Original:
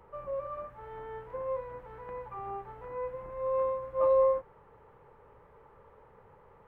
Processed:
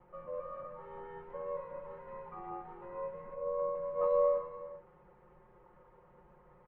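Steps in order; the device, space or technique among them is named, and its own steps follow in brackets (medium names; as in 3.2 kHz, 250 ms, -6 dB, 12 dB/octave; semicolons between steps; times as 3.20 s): 3.34–3.75 s: low-pass 1.2 kHz 12 dB/octave; tone controls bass +3 dB, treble -9 dB; ring-modulated robot voice (ring modulator 44 Hz; comb 5.6 ms, depth 91%); gated-style reverb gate 440 ms flat, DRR 6.5 dB; trim -5 dB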